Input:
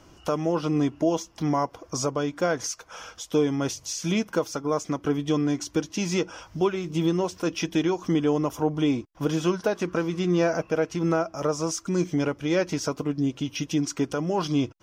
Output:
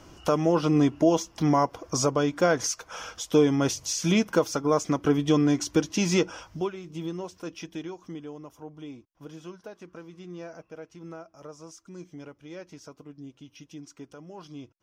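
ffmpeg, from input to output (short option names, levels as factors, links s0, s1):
-af "volume=1.33,afade=t=out:st=6.18:d=0.56:silence=0.237137,afade=t=out:st=7.41:d=0.93:silence=0.398107"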